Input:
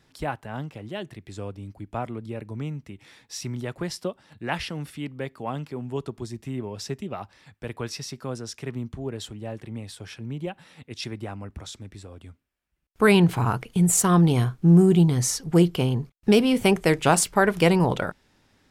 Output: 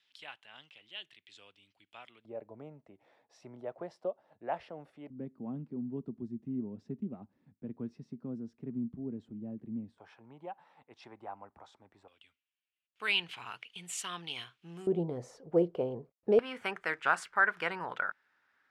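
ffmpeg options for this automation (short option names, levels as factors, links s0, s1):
-af "asetnsamples=n=441:p=0,asendcmd='2.25 bandpass f 640;5.1 bandpass f 230;9.98 bandpass f 860;12.08 bandpass f 2900;14.87 bandpass f 530;16.39 bandpass f 1500',bandpass=f=3100:t=q:w=3.2:csg=0"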